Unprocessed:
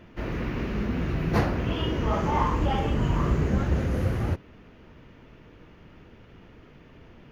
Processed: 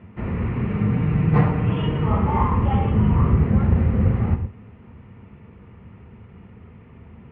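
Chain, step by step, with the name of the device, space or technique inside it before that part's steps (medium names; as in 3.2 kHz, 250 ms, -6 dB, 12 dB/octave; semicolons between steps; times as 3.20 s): gated-style reverb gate 130 ms rising, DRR 8.5 dB; sub-octave bass pedal (octave divider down 1 oct, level -1 dB; cabinet simulation 67–2300 Hz, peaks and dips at 75 Hz +5 dB, 110 Hz +4 dB, 210 Hz +6 dB, 310 Hz -9 dB, 600 Hz -7 dB, 1.6 kHz -8 dB); 0.69–2.08 s: comb 6.6 ms, depth 65%; trim +3.5 dB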